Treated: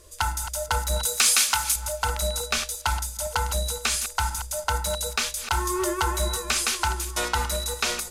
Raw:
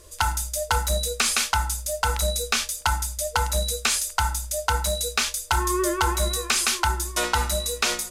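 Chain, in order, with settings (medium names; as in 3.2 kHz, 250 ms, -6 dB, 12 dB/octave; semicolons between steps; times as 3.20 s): backward echo that repeats 172 ms, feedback 43%, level -11.5 dB; 1.05–1.76 s: tilt EQ +2.5 dB/octave; trim -2.5 dB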